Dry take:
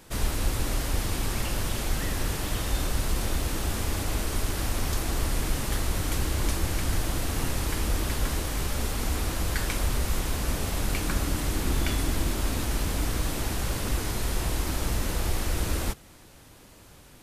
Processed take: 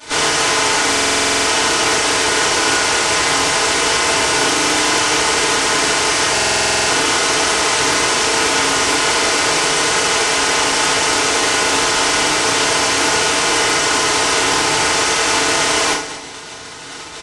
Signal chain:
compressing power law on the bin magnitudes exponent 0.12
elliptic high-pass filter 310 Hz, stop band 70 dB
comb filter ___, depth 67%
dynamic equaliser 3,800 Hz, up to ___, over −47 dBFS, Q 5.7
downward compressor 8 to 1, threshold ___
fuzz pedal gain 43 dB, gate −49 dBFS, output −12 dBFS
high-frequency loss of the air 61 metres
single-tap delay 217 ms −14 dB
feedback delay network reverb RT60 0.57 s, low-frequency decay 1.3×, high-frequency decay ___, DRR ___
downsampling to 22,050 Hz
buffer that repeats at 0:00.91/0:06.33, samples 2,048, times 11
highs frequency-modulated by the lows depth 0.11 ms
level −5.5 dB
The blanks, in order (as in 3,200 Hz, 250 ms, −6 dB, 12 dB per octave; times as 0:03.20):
4.8 ms, −6 dB, −29 dBFS, 0.8×, −10 dB